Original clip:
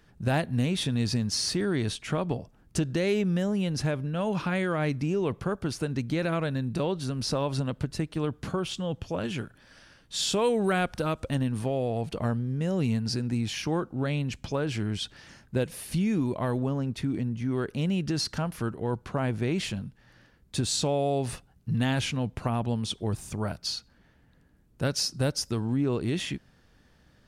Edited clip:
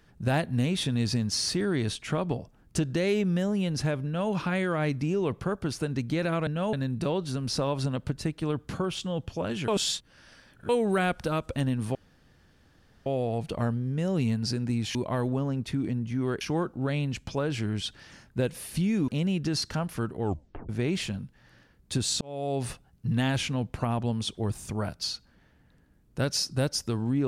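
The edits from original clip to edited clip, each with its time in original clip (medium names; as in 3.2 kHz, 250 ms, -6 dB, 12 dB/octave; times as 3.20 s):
4.05–4.31 s: copy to 6.47 s
9.42–10.43 s: reverse
11.69 s: insert room tone 1.11 s
16.25–17.71 s: move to 13.58 s
18.84 s: tape stop 0.48 s
20.84–21.25 s: fade in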